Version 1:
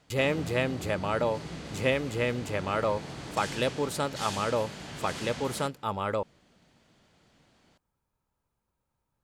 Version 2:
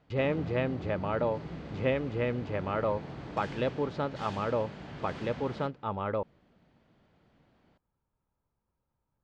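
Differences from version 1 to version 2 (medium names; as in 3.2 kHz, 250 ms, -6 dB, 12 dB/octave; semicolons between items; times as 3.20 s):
speech: add low-pass 5.8 kHz 24 dB/octave; master: add tape spacing loss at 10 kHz 29 dB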